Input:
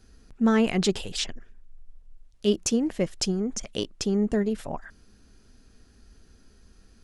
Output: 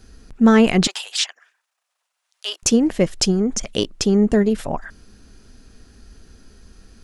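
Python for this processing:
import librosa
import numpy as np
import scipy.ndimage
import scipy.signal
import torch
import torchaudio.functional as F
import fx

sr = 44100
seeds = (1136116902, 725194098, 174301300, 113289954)

y = fx.highpass(x, sr, hz=850.0, slope=24, at=(0.87, 2.63))
y = y * 10.0 ** (8.5 / 20.0)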